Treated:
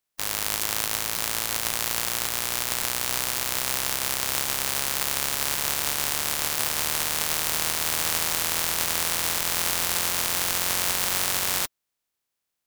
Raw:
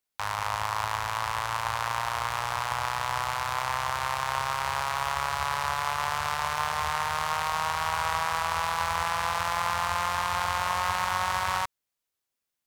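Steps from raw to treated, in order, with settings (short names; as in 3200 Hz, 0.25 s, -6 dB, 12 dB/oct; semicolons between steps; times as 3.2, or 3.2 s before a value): spectral contrast lowered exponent 0.12; crackling interface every 0.55 s, samples 256, repeat, from 0.61; gain +3 dB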